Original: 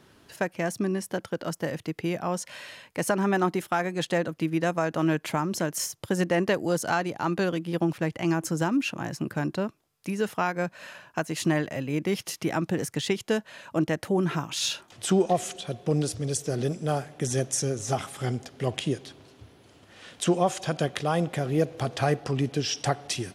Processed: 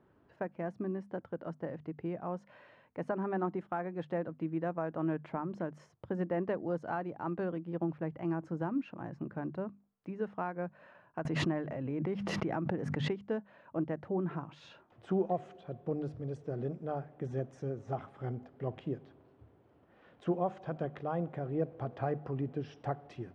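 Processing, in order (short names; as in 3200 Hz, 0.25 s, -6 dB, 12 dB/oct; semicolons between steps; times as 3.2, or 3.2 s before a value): LPF 1200 Hz 12 dB/oct; notches 50/100/150/200/250 Hz; 11.25–13.27 backwards sustainer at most 21 dB/s; gain -8.5 dB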